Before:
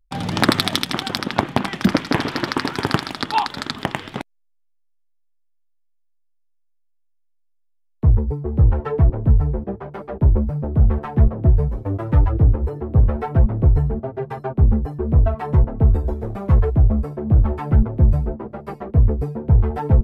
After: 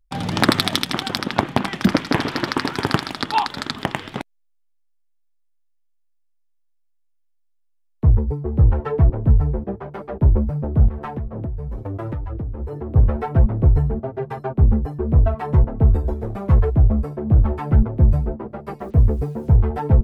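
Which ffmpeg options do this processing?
-filter_complex "[0:a]asettb=1/sr,asplit=3[s0][s1][s2];[s0]atrim=end=10.884[s3];[s1]atrim=start=10.88:end=12.96,asetpts=PTS-STARTPTS,afade=t=in:d=0.004:c=qsin,afade=t=out:st=2.076:d=0.004:c=qsin,acompressor=threshold=0.0708:ratio=16:attack=3.2:release=140:knee=1:detection=peak[s4];[s2]atrim=start=12.956[s5];[s3][s4]acrossfade=d=0.004:c1=hsin:c2=qsin[s6];[s6][s5]acrossfade=d=0.004:c1=qsin:c2=hsin,asettb=1/sr,asplit=3[s7][s8][s9];[s7]atrim=end=18.794[s10];[s8]atrim=start=18.79:end=19.57,asetpts=PTS-STARTPTS,afade=t=in:d=0.004:c=qsin,afade=t=out:st=0.776:d=0.004:c=qsin,acrusher=bits=8:mix=0:aa=0.5[s11];[s9]atrim=start=19.566[s12];[s10][s11]acrossfade=d=0.004:c1=hsin:c2=qsin[s13];[s13][s12]acrossfade=d=0.004:c1=qsin:c2=hsin"

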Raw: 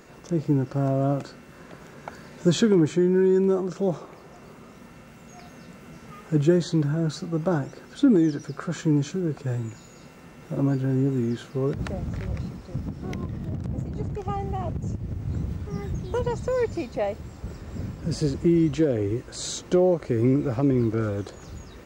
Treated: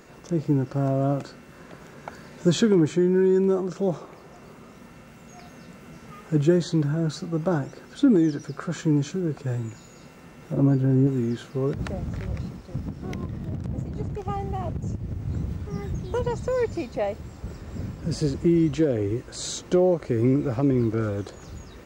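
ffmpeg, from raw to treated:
-filter_complex "[0:a]asettb=1/sr,asplit=3[s0][s1][s2];[s0]atrim=end=10.534[s3];[s1]atrim=start=10.53:end=11.07,asetpts=PTS-STARTPTS,afade=t=in:d=0.004:c=qsin,afade=t=out:st=0.536:d=0.004:c=qsin,tiltshelf=f=890:g=4[s4];[s2]atrim=start=11.066[s5];[s3][s4]acrossfade=d=0.004:c1=hsin:c2=qsin[s6];[s6][s5]acrossfade=d=0.004:c1=qsin:c2=hsin,asettb=1/sr,asplit=3[s7][s8][s9];[s7]atrim=end=12.064[s10];[s8]atrim=start=12.06:end=14.83,asetpts=PTS-STARTPTS,afade=t=in:d=0.004:c=qsin,afade=t=out:st=2.766:d=0.004:c=qsin,aeval=exprs='sgn(val(0))*max(abs(val(0))-0.00168,0)':c=same[s11];[s9]atrim=start=14.826[s12];[s10][s11]acrossfade=d=0.004:c1=hsin:c2=qsin[s13];[s13][s12]acrossfade=d=0.004:c1=qsin:c2=hsin"

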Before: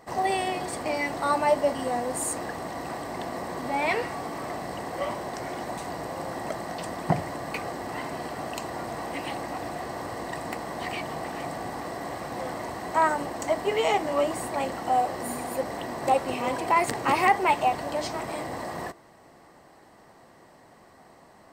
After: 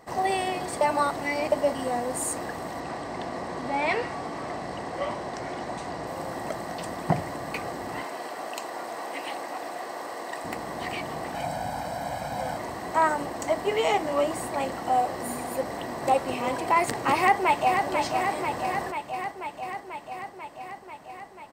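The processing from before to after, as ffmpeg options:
-filter_complex "[0:a]asettb=1/sr,asplit=3[s0][s1][s2];[s0]atrim=end=2.804[s3];[s1]atrim=start=2.8:end=6.07,asetpts=PTS-STARTPTS,afade=t=in:d=0.004:c=qsin,afade=t=out:st=3.266:d=0.004:c=qsin,lowpass=7300[s4];[s2]atrim=start=6.066[s5];[s3][s4]acrossfade=d=0.004:c1=hsin:c2=qsin[s6];[s6][s5]acrossfade=d=0.004:c1=qsin:c2=hsin,asettb=1/sr,asplit=3[s7][s8][s9];[s7]atrim=end=8.034[s10];[s8]atrim=start=8.03:end=10.44,asetpts=PTS-STARTPTS,afade=t=in:d=0.004:c=qsin,afade=t=out:st=2.406:d=0.004:c=qsin,highpass=380[s11];[s9]atrim=start=10.436[s12];[s10][s11]acrossfade=d=0.004:c1=hsin:c2=qsin[s13];[s13][s12]acrossfade=d=0.004:c1=qsin:c2=hsin,asettb=1/sr,asplit=3[s14][s15][s16];[s14]atrim=end=11.344[s17];[s15]atrim=start=11.34:end=12.57,asetpts=PTS-STARTPTS,afade=t=in:d=0.004:c=qsin,afade=t=out:st=1.226:d=0.004:c=qsin,aecho=1:1:1.3:0.81,atrim=end_sample=54243[s18];[s16]atrim=start=12.566[s19];[s17][s18]acrossfade=d=0.004:c1=hsin:c2=qsin[s20];[s20][s19]acrossfade=d=0.004:c1=qsin:c2=hsin,asplit=2[s21][s22];[s22]afade=t=in:st=17.17:d=0.01,afade=t=out:st=17.84:d=0.01,aecho=0:1:490|980|1470|1960|2450|2940|3430|3920|4410|4900|5390|5880:0.530884|0.398163|0.298622|0.223967|0.167975|0.125981|0.094486|0.0708645|0.0531484|0.0398613|0.029896|0.022422[s23];[s21][s23]amix=inputs=2:normalize=0,asplit=3[s24][s25][s26];[s24]atrim=end=0.812[s27];[s25]atrim=start=0.808:end=1.522,asetpts=PTS-STARTPTS,areverse[s28];[s26]atrim=start=1.518[s29];[s27][s28]acrossfade=d=0.004:c1=hsin:c2=hsin[s30];[s30][s29]acrossfade=d=0.004:c1=hsin:c2=hsin"

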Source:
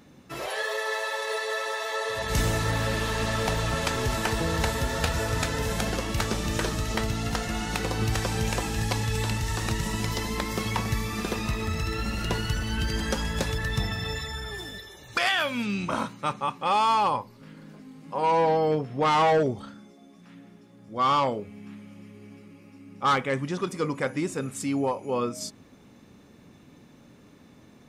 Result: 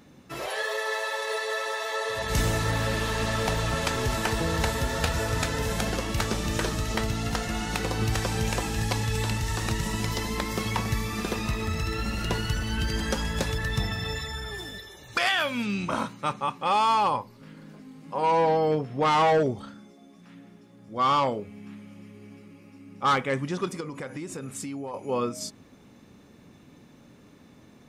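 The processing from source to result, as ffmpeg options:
-filter_complex "[0:a]asettb=1/sr,asplit=3[s0][s1][s2];[s0]atrim=end=23.804[s3];[s1]atrim=start=23.8:end=24.94,asetpts=PTS-STARTPTS,afade=t=in:d=0.004:c=qsin,afade=t=out:st=1.136:d=0.004:c=qsin,acompressor=threshold=0.0282:ratio=12:attack=3.2:release=140:knee=1:detection=peak[s4];[s2]atrim=start=24.936[s5];[s3][s4]acrossfade=d=0.004:c1=hsin:c2=qsin[s6];[s6][s5]acrossfade=d=0.004:c1=qsin:c2=hsin"

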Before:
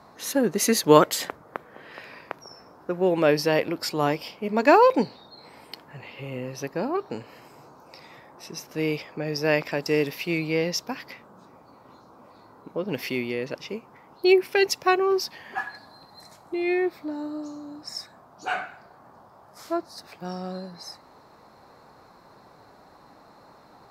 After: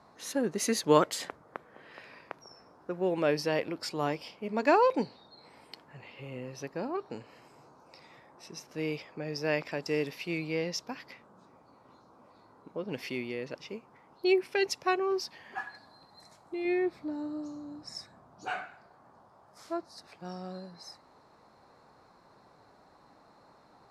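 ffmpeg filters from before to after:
-filter_complex "[0:a]asettb=1/sr,asplit=3[s0][s1][s2];[s0]atrim=end=16.654[s3];[s1]atrim=start=16.65:end=18.51,asetpts=PTS-STARTPTS,afade=t=in:d=0.004:c=qsin,afade=t=out:st=1.856:d=0.004:c=qsin,lowshelf=f=250:g=9[s4];[s2]atrim=start=18.506[s5];[s3][s4]acrossfade=d=0.004:c1=hsin:c2=qsin[s6];[s6][s5]acrossfade=d=0.004:c1=qsin:c2=hsin,lowpass=f=11000:w=0.5412,lowpass=f=11000:w=1.3066,volume=0.422"

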